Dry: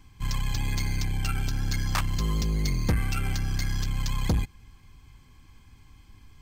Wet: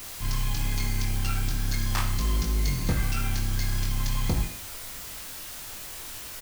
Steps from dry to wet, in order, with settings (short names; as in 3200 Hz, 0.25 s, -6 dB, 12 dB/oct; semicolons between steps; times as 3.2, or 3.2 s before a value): added noise white -39 dBFS; doubler 22 ms -4.5 dB; on a send: reverb RT60 0.50 s, pre-delay 10 ms, DRR 6.5 dB; on the sum: gain -2.5 dB